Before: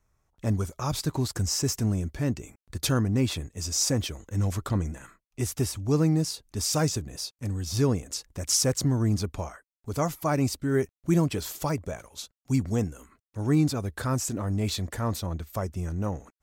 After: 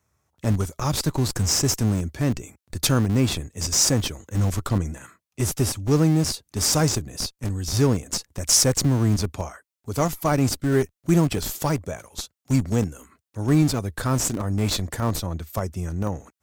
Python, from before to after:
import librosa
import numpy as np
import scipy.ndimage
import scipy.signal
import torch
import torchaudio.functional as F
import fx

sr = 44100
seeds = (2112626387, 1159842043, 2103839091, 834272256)

p1 = scipy.signal.sosfilt(scipy.signal.butter(4, 66.0, 'highpass', fs=sr, output='sos'), x)
p2 = fx.high_shelf(p1, sr, hz=3900.0, db=3.5)
p3 = fx.schmitt(p2, sr, flips_db=-24.5)
p4 = p2 + (p3 * librosa.db_to_amplitude(-7.5))
y = p4 * librosa.db_to_amplitude(3.0)